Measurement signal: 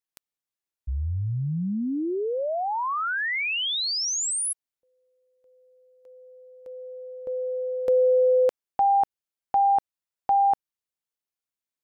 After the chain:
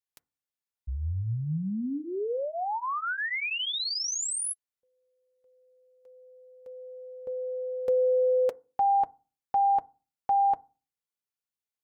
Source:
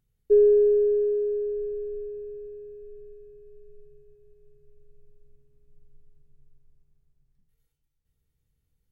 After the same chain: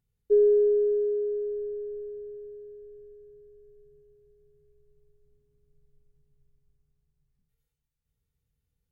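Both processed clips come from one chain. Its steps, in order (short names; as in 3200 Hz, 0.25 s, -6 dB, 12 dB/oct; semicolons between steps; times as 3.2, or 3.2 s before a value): notch comb 320 Hz; FDN reverb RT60 0.33 s, low-frequency decay 1.45×, high-frequency decay 0.25×, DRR 18 dB; gain -3 dB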